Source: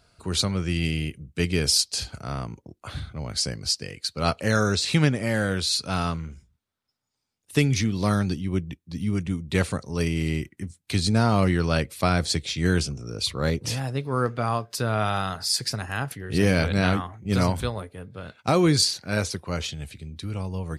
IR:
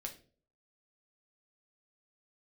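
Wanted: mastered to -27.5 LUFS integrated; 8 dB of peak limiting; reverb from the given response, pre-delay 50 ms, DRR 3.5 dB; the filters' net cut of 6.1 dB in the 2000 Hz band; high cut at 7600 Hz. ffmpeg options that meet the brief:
-filter_complex "[0:a]lowpass=7.6k,equalizer=f=2k:t=o:g=-8.5,alimiter=limit=-16dB:level=0:latency=1,asplit=2[a][b];[1:a]atrim=start_sample=2205,adelay=50[c];[b][c]afir=irnorm=-1:irlink=0,volume=-1dB[d];[a][d]amix=inputs=2:normalize=0,volume=-1dB"

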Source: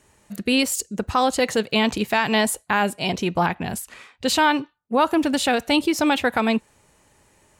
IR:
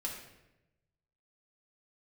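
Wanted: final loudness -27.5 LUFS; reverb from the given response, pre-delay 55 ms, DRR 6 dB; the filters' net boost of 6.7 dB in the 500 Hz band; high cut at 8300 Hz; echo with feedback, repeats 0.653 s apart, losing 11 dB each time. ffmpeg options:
-filter_complex "[0:a]lowpass=8.3k,equalizer=f=500:t=o:g=8,aecho=1:1:653|1306|1959:0.282|0.0789|0.0221,asplit=2[a][b];[1:a]atrim=start_sample=2205,adelay=55[c];[b][c]afir=irnorm=-1:irlink=0,volume=-7dB[d];[a][d]amix=inputs=2:normalize=0,volume=-10dB"

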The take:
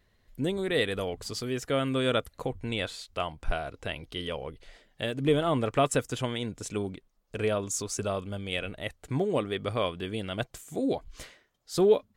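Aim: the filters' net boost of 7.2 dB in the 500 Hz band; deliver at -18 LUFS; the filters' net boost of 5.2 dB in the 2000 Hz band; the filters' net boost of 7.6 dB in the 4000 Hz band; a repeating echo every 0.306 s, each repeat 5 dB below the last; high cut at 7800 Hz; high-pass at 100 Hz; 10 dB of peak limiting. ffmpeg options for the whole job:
-af "highpass=100,lowpass=7.8k,equalizer=f=500:t=o:g=8.5,equalizer=f=2k:t=o:g=3.5,equalizer=f=4k:t=o:g=8.5,alimiter=limit=-14.5dB:level=0:latency=1,aecho=1:1:306|612|918|1224|1530|1836|2142:0.562|0.315|0.176|0.0988|0.0553|0.031|0.0173,volume=8.5dB"

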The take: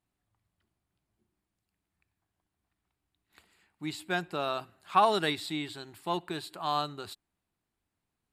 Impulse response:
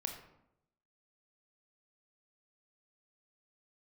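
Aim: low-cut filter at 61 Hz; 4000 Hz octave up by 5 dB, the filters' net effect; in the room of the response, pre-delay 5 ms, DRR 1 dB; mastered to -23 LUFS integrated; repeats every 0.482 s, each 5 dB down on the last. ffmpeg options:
-filter_complex "[0:a]highpass=61,equalizer=f=4k:t=o:g=5.5,aecho=1:1:482|964|1446|1928|2410|2892|3374:0.562|0.315|0.176|0.0988|0.0553|0.031|0.0173,asplit=2[a][b];[1:a]atrim=start_sample=2205,adelay=5[c];[b][c]afir=irnorm=-1:irlink=0,volume=-1dB[d];[a][d]amix=inputs=2:normalize=0,volume=4.5dB"

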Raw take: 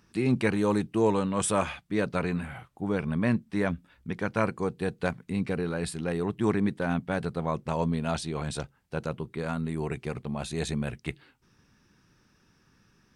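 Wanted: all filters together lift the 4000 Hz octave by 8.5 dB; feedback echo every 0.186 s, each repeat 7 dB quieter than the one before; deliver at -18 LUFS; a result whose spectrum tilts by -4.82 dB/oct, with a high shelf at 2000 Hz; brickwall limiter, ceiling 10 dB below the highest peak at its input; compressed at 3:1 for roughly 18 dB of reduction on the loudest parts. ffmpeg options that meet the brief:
-af "highshelf=f=2k:g=6.5,equalizer=f=4k:t=o:g=4,acompressor=threshold=-45dB:ratio=3,alimiter=level_in=11dB:limit=-24dB:level=0:latency=1,volume=-11dB,aecho=1:1:186|372|558|744|930:0.447|0.201|0.0905|0.0407|0.0183,volume=27dB"

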